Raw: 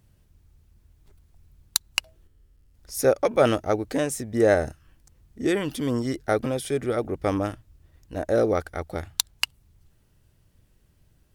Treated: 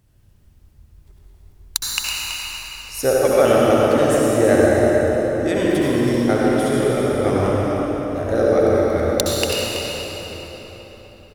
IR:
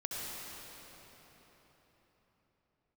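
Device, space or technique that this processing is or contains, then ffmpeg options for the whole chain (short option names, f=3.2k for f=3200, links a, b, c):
cave: -filter_complex "[0:a]aecho=1:1:327:0.355[a];[1:a]atrim=start_sample=2205[b];[a][b]afir=irnorm=-1:irlink=0,volume=4dB"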